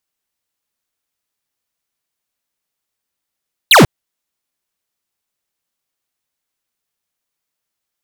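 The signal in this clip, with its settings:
single falling chirp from 4,400 Hz, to 100 Hz, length 0.14 s square, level −5.5 dB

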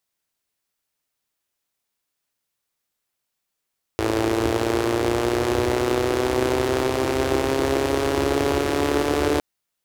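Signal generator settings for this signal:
pulse-train model of a four-cylinder engine, changing speed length 5.41 s, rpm 3,300, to 4,400, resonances 82/350 Hz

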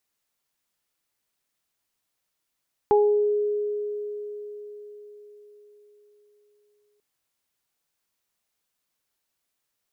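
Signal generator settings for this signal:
harmonic partials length 4.09 s, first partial 416 Hz, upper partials −2.5 dB, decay 4.76 s, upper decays 0.48 s, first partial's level −15 dB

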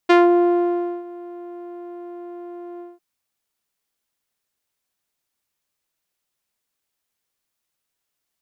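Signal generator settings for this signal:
subtractive voice saw F4 12 dB per octave, low-pass 650 Hz, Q 0.79, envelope 2.5 octaves, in 0.19 s, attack 12 ms, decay 0.93 s, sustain −22.5 dB, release 0.19 s, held 2.71 s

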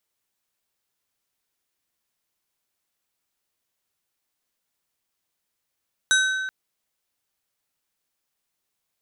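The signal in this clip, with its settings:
struck glass plate, length 0.38 s, lowest mode 1,530 Hz, modes 5, decay 1.98 s, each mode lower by 3 dB, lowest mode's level −16.5 dB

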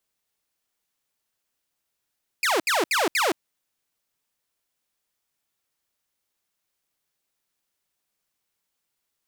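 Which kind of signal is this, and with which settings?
repeated falling chirps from 2,600 Hz, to 290 Hz, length 0.17 s saw, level −17 dB, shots 4, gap 0.07 s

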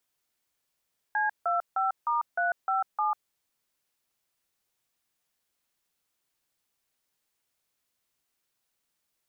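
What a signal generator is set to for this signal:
touch tones "C25*357", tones 146 ms, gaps 160 ms, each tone −26.5 dBFS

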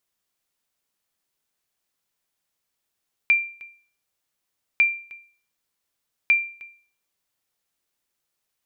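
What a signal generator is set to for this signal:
ping with an echo 2,370 Hz, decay 0.44 s, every 1.50 s, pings 3, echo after 0.31 s, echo −23 dB −10.5 dBFS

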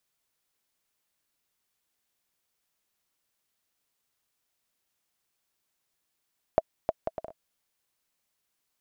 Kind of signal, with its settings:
bouncing ball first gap 0.31 s, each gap 0.59, 647 Hz, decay 35 ms −8.5 dBFS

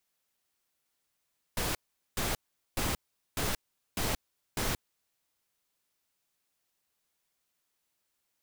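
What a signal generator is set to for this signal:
noise bursts pink, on 0.18 s, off 0.42 s, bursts 6, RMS −31 dBFS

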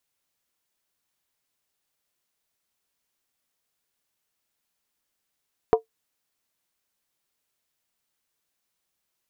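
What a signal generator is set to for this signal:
struck skin, lowest mode 447 Hz, decay 0.12 s, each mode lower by 6 dB, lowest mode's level −9.5 dB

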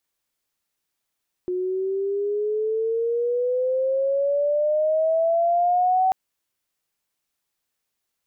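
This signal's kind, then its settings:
glide logarithmic 360 Hz → 760 Hz −22.5 dBFS → −16 dBFS 4.64 s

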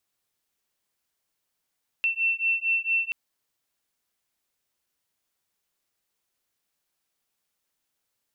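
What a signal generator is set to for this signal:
two tones that beat 2,690 Hz, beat 4.4 Hz, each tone −25.5 dBFS 1.08 s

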